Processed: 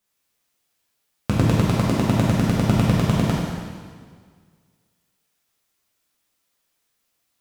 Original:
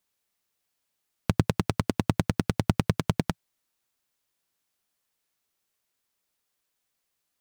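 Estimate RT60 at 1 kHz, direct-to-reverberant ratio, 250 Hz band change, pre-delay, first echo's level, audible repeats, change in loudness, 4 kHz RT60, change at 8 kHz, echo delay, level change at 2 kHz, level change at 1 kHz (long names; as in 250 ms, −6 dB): 1.8 s, −6.5 dB, +8.5 dB, 4 ms, no echo audible, no echo audible, +8.0 dB, 1.7 s, +6.5 dB, no echo audible, +6.5 dB, +7.0 dB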